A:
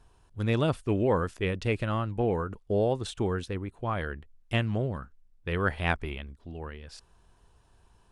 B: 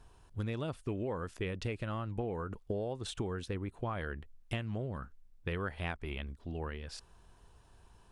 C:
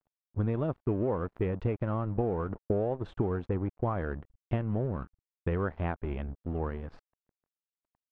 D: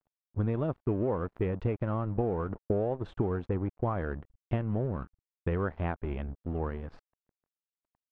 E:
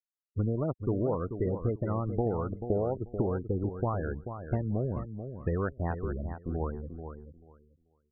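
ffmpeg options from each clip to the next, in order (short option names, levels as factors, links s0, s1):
-af "acompressor=threshold=0.02:ratio=12,volume=1.12"
-af "aeval=exprs='sgn(val(0))*max(abs(val(0))-0.00316,0)':c=same,lowpass=1100,volume=2.66"
-af anull
-af "afftfilt=real='re*gte(hypot(re,im),0.0224)':imag='im*gte(hypot(re,im),0.0224)':win_size=1024:overlap=0.75,aecho=1:1:437|874|1311:0.355|0.0639|0.0115"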